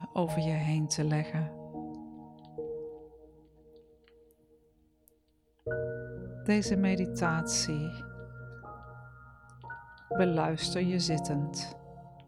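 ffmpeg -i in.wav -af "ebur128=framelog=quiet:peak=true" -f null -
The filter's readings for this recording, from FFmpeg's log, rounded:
Integrated loudness:
  I:         -31.8 LUFS
  Threshold: -44.1 LUFS
Loudness range:
  LRA:        15.3 LU
  Threshold: -54.9 LUFS
  LRA low:   -47.3 LUFS
  LRA high:  -32.1 LUFS
True peak:
  Peak:      -13.5 dBFS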